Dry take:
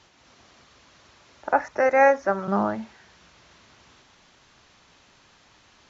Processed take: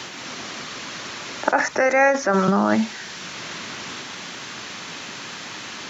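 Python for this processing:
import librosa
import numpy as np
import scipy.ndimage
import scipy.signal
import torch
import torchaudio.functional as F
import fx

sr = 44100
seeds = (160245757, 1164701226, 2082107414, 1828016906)

p1 = fx.high_shelf(x, sr, hz=3400.0, db=7.5)
p2 = fx.over_compress(p1, sr, threshold_db=-28.0, ratio=-0.5)
p3 = p1 + (p2 * 10.0 ** (1.0 / 20.0))
p4 = scipy.signal.sosfilt(scipy.signal.butter(2, 160.0, 'highpass', fs=sr, output='sos'), p3)
p5 = fx.peak_eq(p4, sr, hz=720.0, db=-6.5, octaves=2.0)
p6 = fx.band_squash(p5, sr, depth_pct=40)
y = p6 * 10.0 ** (6.0 / 20.0)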